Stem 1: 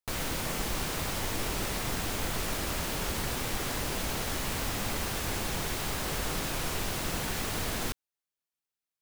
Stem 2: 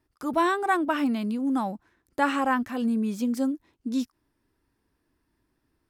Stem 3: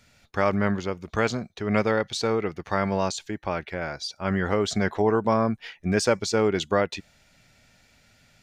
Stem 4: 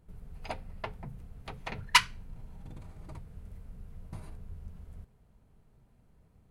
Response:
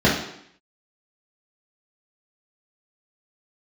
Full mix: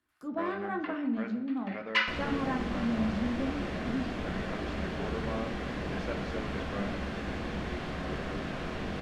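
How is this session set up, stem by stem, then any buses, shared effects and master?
−5.5 dB, 2.00 s, send −22.5 dB, no processing
−15.5 dB, 0.00 s, send −21.5 dB, no processing
−17.0 dB, 0.00 s, send −23 dB, low-shelf EQ 420 Hz −8.5 dB; dead-zone distortion −41 dBFS
−5.0 dB, 0.00 s, send −12.5 dB, Butterworth high-pass 1,000 Hz; rotating-speaker cabinet horn 0.75 Hz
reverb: on, RT60 0.70 s, pre-delay 3 ms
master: treble cut that deepens with the level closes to 2,900 Hz, closed at −34.5 dBFS

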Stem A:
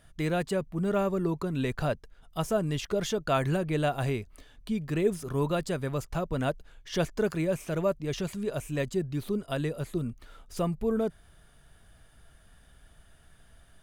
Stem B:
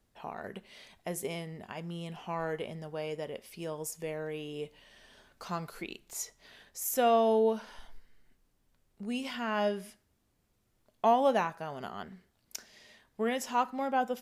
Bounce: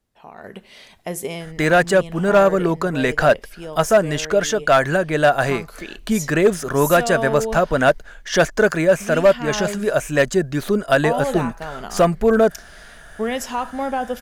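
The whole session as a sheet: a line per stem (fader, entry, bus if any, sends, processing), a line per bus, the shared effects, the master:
+1.5 dB, 1.40 s, no send, graphic EQ with 15 bands 100 Hz −12 dB, 630 Hz +8 dB, 1,600 Hz +12 dB, 6,300 Hz +7 dB
−2.0 dB, 0.00 s, no send, brickwall limiter −23.5 dBFS, peak gain reduction 8.5 dB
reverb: not used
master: automatic gain control gain up to 11 dB; hard clipping −7 dBFS, distortion −19 dB

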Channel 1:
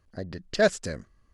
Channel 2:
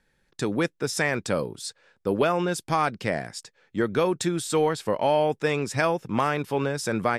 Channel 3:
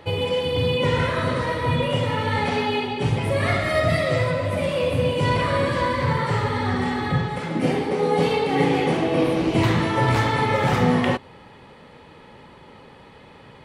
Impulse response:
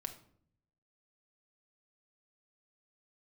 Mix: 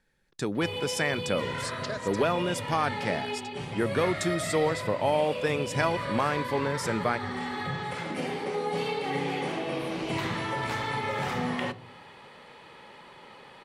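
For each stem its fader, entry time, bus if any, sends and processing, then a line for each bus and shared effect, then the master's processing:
−3.5 dB, 1.30 s, bus A, no send, no processing
−4.0 dB, 0.00 s, no bus, send −20.5 dB, no processing
−0.5 dB, 0.55 s, bus A, send −13 dB, automatic ducking −12 dB, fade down 1.35 s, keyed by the second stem
bus A: 0.0 dB, high-pass filter 800 Hz 6 dB per octave; downward compressor, threshold −33 dBFS, peak gain reduction 11.5 dB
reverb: on, RT60 0.60 s, pre-delay 5 ms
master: no processing

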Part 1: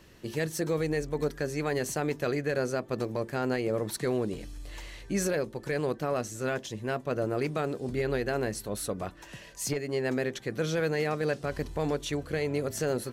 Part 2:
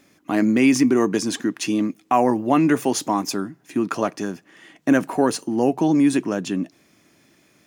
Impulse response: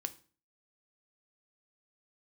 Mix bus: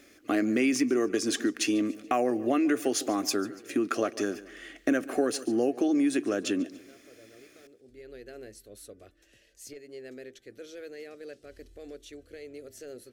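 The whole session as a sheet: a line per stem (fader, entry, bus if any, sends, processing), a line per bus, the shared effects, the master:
−12.5 dB, 0.00 s, no send, no echo send, automatic ducking −10 dB, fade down 0.30 s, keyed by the second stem
+1.0 dB, 0.00 s, no send, echo send −20.5 dB, parametric band 1,100 Hz +8.5 dB 1.5 octaves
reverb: not used
echo: repeating echo 143 ms, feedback 37%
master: phaser with its sweep stopped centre 390 Hz, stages 4; downward compressor 3 to 1, threshold −25 dBFS, peak gain reduction 10 dB

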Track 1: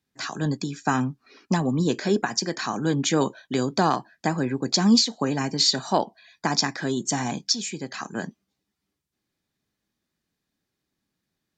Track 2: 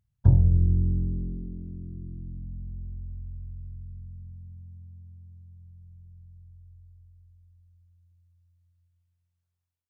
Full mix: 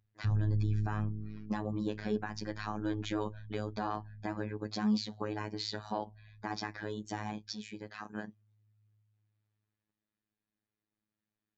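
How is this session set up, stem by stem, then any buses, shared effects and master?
−8.0 dB, 0.00 s, no send, no processing
+1.0 dB, 0.00 s, no send, automatic ducking −7 dB, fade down 0.25 s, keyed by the first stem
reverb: not used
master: low-pass filter 3,000 Hz 12 dB per octave; phases set to zero 106 Hz; brickwall limiter −21 dBFS, peak gain reduction 8 dB

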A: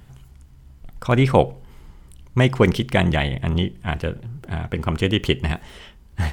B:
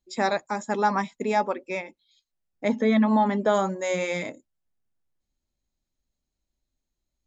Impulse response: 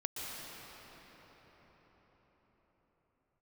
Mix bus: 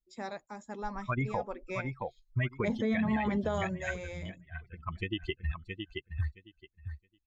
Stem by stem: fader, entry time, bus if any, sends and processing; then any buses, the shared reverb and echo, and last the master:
−1.5 dB, 0.00 s, no send, echo send −8.5 dB, spectral dynamics exaggerated over time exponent 3; downward compressor 3 to 1, threshold −27 dBFS, peak gain reduction 10.5 dB; low-pass with resonance 2,200 Hz, resonance Q 2.2
0:01.33 −16.5 dB → 0:01.79 −7 dB → 0:03.59 −7 dB → 0:03.96 −16 dB, 0.00 s, no send, no echo send, low-shelf EQ 130 Hz +12 dB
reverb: not used
echo: repeating echo 669 ms, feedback 17%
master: brickwall limiter −22 dBFS, peak gain reduction 9.5 dB

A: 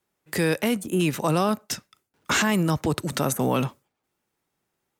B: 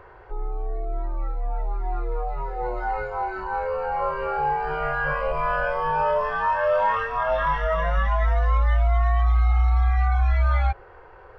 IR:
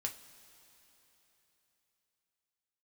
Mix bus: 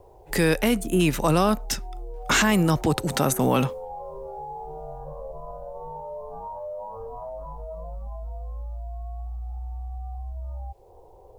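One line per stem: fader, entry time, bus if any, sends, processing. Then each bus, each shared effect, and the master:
+2.0 dB, 0.00 s, no send, no processing
−1.5 dB, 0.00 s, no send, Butterworth low-pass 880 Hz 48 dB per octave; downward compressor 8 to 1, threshold −29 dBFS, peak gain reduction 12.5 dB; brickwall limiter −27.5 dBFS, peak gain reduction 5 dB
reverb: not used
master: bit reduction 12 bits

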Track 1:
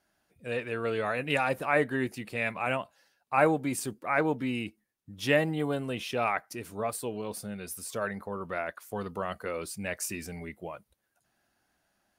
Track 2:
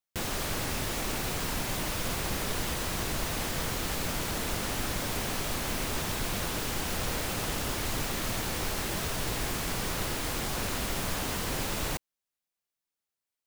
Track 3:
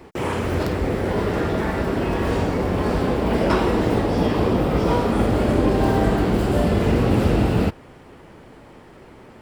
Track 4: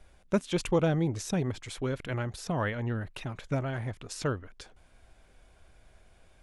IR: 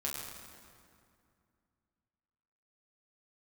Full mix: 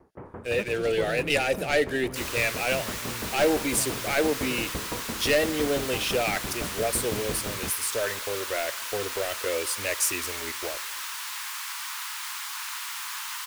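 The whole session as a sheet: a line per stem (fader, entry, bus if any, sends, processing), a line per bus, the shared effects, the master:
−4.0 dB, 0.00 s, send −21 dB, tilt shelving filter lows −3 dB, about 690 Hz; leveller curve on the samples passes 3; phaser with its sweep stopped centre 440 Hz, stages 4
+0.5 dB, 2.00 s, no send, Butterworth high-pass 910 Hz 72 dB per octave
−11.0 dB, 0.00 s, no send, low-pass filter 1,600 Hz 24 dB per octave; tremolo with a ramp in dB decaying 5.9 Hz, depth 21 dB
−10.5 dB, 0.25 s, no send, no processing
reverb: on, RT60 2.3 s, pre-delay 7 ms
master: no processing

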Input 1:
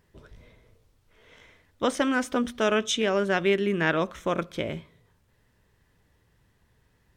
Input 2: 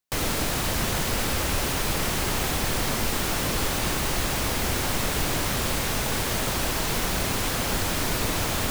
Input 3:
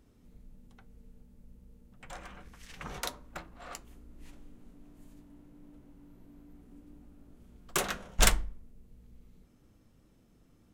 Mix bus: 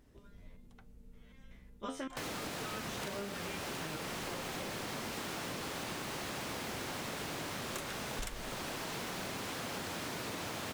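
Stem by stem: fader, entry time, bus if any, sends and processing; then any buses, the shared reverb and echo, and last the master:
+1.0 dB, 0.00 s, no send, step-sequenced resonator 5.3 Hz 67–460 Hz
−2.5 dB, 2.05 s, no send, high-pass filter 140 Hz 12 dB per octave; high-shelf EQ 8,200 Hz −9.5 dB
−1.5 dB, 0.00 s, no send, no processing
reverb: not used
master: downward compressor 12 to 1, threshold −37 dBFS, peak gain reduction 19 dB

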